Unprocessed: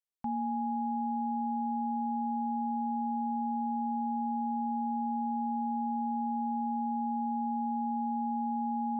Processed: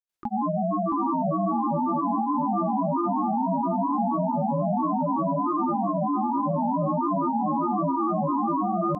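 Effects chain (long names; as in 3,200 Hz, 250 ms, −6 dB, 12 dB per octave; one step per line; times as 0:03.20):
granular cloud 100 ms, grains 20 per second, pitch spread up and down by 7 semitones
repeating echo 669 ms, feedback 22%, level −9 dB
level +8.5 dB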